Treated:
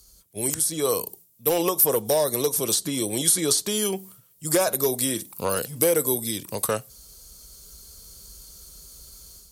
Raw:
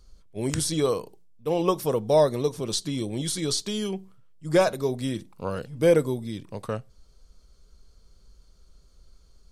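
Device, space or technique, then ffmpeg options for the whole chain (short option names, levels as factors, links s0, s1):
FM broadcast chain: -filter_complex "[0:a]highpass=50,dynaudnorm=f=720:g=3:m=2.82,acrossover=split=300|2100[s0][s1][s2];[s0]acompressor=threshold=0.0178:ratio=4[s3];[s1]acompressor=threshold=0.158:ratio=4[s4];[s2]acompressor=threshold=0.0112:ratio=4[s5];[s3][s4][s5]amix=inputs=3:normalize=0,aemphasis=mode=production:type=50fm,alimiter=limit=0.266:level=0:latency=1:release=409,asoftclip=type=hard:threshold=0.178,lowpass=f=15000:w=0.5412,lowpass=f=15000:w=1.3066,aemphasis=mode=production:type=50fm"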